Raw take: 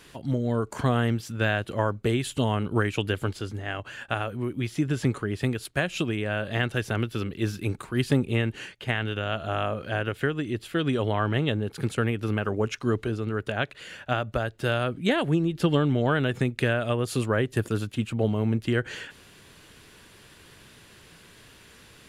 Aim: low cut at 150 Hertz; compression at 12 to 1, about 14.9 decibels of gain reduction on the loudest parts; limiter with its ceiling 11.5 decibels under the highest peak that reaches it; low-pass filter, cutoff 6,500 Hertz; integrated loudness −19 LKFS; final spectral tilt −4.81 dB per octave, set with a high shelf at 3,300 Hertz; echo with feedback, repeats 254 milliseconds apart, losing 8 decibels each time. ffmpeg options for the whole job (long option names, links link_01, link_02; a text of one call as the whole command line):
ffmpeg -i in.wav -af "highpass=150,lowpass=6500,highshelf=frequency=3300:gain=-3.5,acompressor=threshold=-34dB:ratio=12,alimiter=level_in=4.5dB:limit=-24dB:level=0:latency=1,volume=-4.5dB,aecho=1:1:254|508|762|1016|1270:0.398|0.159|0.0637|0.0255|0.0102,volume=21.5dB" out.wav